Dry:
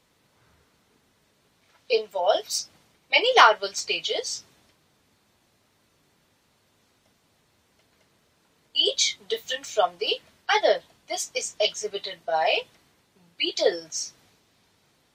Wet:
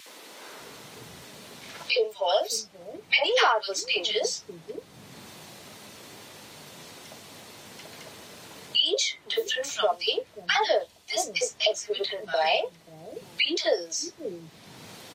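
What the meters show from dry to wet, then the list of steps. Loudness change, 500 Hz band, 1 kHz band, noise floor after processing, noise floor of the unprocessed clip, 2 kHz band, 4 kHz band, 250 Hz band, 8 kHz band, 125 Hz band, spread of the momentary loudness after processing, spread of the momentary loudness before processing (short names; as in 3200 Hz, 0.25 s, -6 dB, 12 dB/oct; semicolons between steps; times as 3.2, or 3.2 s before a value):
-1.5 dB, -1.5 dB, -4.5 dB, -54 dBFS, -67 dBFS, -1.5 dB, -0.5 dB, +1.5 dB, -1.5 dB, n/a, 21 LU, 13 LU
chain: three bands offset in time highs, mids, lows 60/590 ms, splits 260/1400 Hz; wow and flutter 25 cents; three-band squash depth 70%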